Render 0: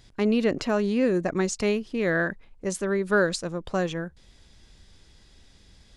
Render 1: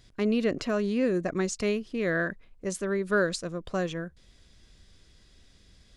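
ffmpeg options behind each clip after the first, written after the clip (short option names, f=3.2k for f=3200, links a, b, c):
-af "bandreject=f=860:w=5.5,volume=-3dB"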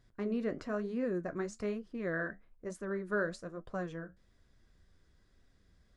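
-af "flanger=delay=7.1:depth=7.3:regen=-62:speed=1.1:shape=triangular,highshelf=f=2.1k:t=q:w=1.5:g=-7.5,volume=-4.5dB"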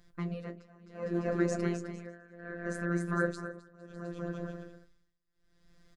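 -af "aecho=1:1:260|455|601.2|710.9|793.2:0.631|0.398|0.251|0.158|0.1,tremolo=f=0.67:d=0.96,afftfilt=real='hypot(re,im)*cos(PI*b)':imag='0':win_size=1024:overlap=0.75,volume=8.5dB"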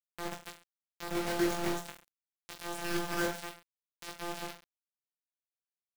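-af "acrusher=bits=4:mix=0:aa=0.000001,aecho=1:1:20|43|69.45|99.87|134.8:0.631|0.398|0.251|0.158|0.1,volume=-4.5dB"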